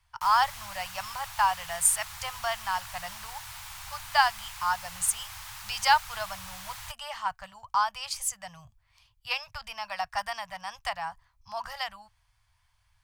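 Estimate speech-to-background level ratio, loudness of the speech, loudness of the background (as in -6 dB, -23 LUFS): 11.5 dB, -29.5 LUFS, -41.0 LUFS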